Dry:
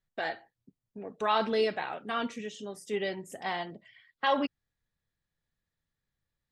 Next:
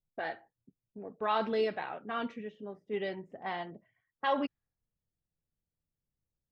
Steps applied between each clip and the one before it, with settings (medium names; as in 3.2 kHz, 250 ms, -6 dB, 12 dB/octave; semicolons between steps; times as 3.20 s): level-controlled noise filter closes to 610 Hz, open at -25.5 dBFS; treble shelf 4.5 kHz -12 dB; trim -2.5 dB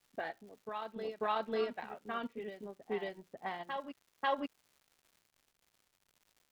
transient shaper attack +5 dB, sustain -11 dB; crackle 180 per s -49 dBFS; reverse echo 542 ms -7.5 dB; trim -5.5 dB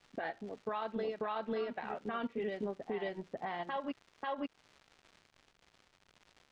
compression 6:1, threshold -42 dBFS, peak gain reduction 13.5 dB; peak limiter -39 dBFS, peak gain reduction 10 dB; distance through air 110 m; trim +11 dB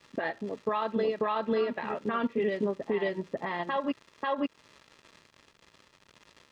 comb of notches 750 Hz; trim +9 dB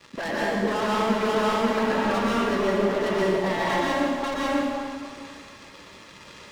overload inside the chain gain 36 dB; plate-style reverb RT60 2.1 s, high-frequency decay 0.7×, pre-delay 105 ms, DRR -6.5 dB; trim +7.5 dB